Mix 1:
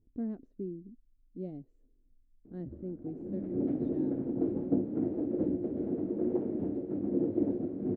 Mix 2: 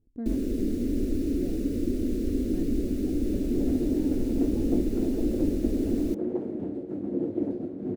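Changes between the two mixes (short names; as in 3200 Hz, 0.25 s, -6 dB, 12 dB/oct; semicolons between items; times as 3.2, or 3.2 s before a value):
first sound: unmuted; master: remove tape spacing loss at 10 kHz 30 dB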